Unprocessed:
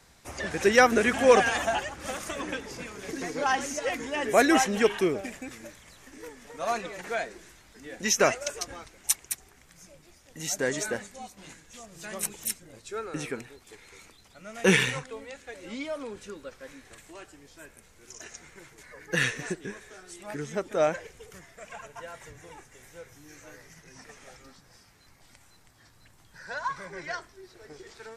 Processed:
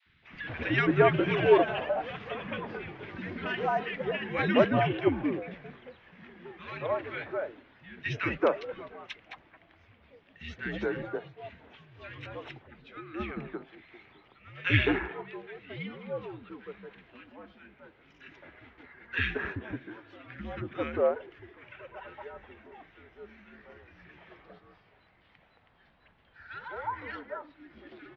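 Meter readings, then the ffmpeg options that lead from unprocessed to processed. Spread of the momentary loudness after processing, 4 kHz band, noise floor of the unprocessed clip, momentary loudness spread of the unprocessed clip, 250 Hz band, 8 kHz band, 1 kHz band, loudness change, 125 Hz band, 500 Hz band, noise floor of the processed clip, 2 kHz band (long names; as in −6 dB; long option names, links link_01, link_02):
23 LU, −6.0 dB, −58 dBFS, 24 LU, −1.5 dB, below −35 dB, −4.0 dB, −3.0 dB, +4.0 dB, −2.0 dB, −64 dBFS, −4.0 dB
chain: -filter_complex "[0:a]adynamicequalizer=threshold=0.0112:dfrequency=1500:dqfactor=1.6:tfrequency=1500:tqfactor=1.6:attack=5:release=100:ratio=0.375:range=2.5:mode=cutabove:tftype=bell,acrossover=split=340|1500[link_01][link_02][link_03];[link_01]adelay=50[link_04];[link_02]adelay=220[link_05];[link_04][link_05][link_03]amix=inputs=3:normalize=0,highpass=frequency=150:width_type=q:width=0.5412,highpass=frequency=150:width_type=q:width=1.307,lowpass=frequency=3300:width_type=q:width=0.5176,lowpass=frequency=3300:width_type=q:width=0.7071,lowpass=frequency=3300:width_type=q:width=1.932,afreqshift=-82"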